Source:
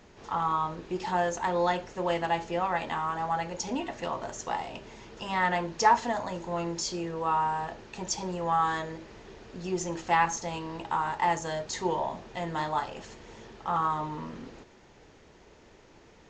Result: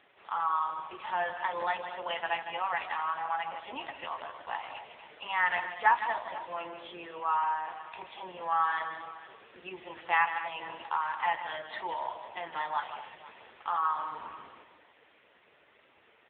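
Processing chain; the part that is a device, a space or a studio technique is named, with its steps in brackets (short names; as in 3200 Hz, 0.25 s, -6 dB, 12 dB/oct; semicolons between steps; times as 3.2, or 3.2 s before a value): tilt +4 dB/oct; 3.49–4.13 gate with hold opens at -34 dBFS; tapped delay 0.156/0.235 s -10/-13 dB; dynamic EQ 390 Hz, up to -7 dB, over -43 dBFS, Q 1.4; satellite phone (BPF 320–3300 Hz; echo 0.488 s -17.5 dB; AMR-NB 5.9 kbps 8000 Hz)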